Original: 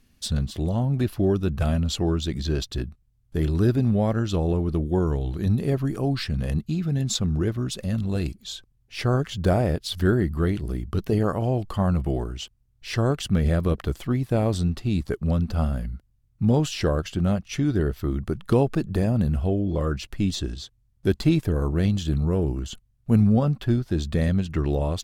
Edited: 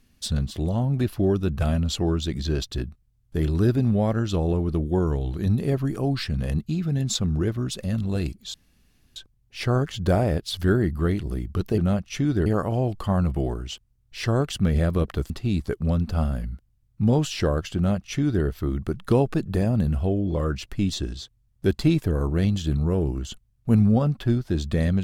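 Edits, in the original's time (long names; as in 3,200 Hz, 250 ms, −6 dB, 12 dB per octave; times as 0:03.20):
0:08.54: splice in room tone 0.62 s
0:14.00–0:14.71: remove
0:17.17–0:17.85: duplicate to 0:11.16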